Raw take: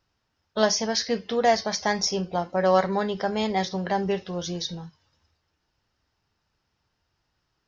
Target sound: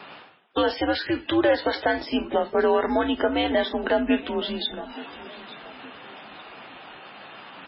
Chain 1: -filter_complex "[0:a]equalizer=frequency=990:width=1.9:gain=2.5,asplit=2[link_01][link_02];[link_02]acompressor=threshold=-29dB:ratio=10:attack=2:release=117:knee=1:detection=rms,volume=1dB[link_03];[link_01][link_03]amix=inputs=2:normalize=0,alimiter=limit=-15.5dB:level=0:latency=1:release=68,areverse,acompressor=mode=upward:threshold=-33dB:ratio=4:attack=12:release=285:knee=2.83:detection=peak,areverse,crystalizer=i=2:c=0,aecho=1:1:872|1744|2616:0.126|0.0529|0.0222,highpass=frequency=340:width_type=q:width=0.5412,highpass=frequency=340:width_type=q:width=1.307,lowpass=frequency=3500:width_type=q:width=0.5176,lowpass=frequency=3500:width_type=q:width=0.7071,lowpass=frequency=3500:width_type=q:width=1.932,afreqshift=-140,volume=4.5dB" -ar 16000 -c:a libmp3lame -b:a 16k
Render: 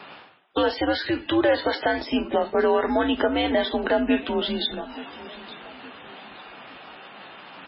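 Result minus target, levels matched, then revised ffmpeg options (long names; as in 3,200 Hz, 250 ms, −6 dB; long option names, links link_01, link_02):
downward compressor: peak gain reduction −8 dB
-filter_complex "[0:a]equalizer=frequency=990:width=1.9:gain=2.5,asplit=2[link_01][link_02];[link_02]acompressor=threshold=-38dB:ratio=10:attack=2:release=117:knee=1:detection=rms,volume=1dB[link_03];[link_01][link_03]amix=inputs=2:normalize=0,alimiter=limit=-15.5dB:level=0:latency=1:release=68,areverse,acompressor=mode=upward:threshold=-33dB:ratio=4:attack=12:release=285:knee=2.83:detection=peak,areverse,crystalizer=i=2:c=0,aecho=1:1:872|1744|2616:0.126|0.0529|0.0222,highpass=frequency=340:width_type=q:width=0.5412,highpass=frequency=340:width_type=q:width=1.307,lowpass=frequency=3500:width_type=q:width=0.5176,lowpass=frequency=3500:width_type=q:width=0.7071,lowpass=frequency=3500:width_type=q:width=1.932,afreqshift=-140,volume=4.5dB" -ar 16000 -c:a libmp3lame -b:a 16k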